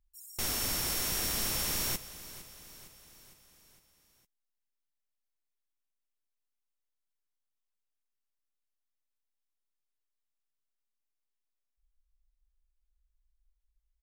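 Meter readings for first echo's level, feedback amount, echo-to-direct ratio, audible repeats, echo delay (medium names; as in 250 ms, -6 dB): -16.0 dB, 56%, -14.5 dB, 4, 458 ms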